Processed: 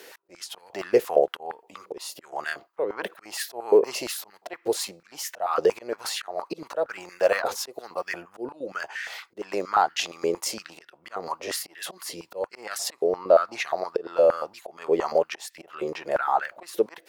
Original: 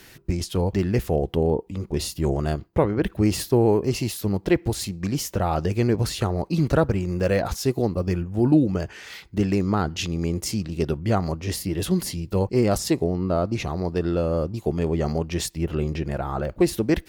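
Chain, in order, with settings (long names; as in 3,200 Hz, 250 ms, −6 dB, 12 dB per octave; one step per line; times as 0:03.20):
volume swells 284 ms
high-pass on a step sequencer 8.6 Hz 470–1,700 Hz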